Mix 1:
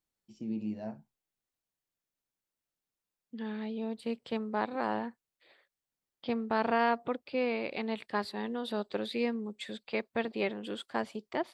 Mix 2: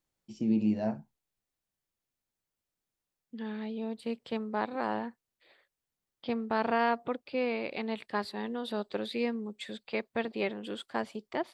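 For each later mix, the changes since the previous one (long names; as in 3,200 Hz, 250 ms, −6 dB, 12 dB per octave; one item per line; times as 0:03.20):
first voice +8.5 dB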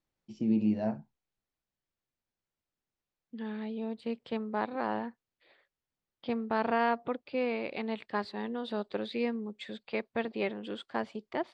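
master: add high-frequency loss of the air 100 metres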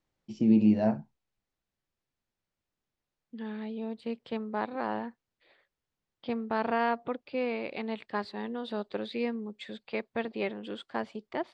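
first voice +5.5 dB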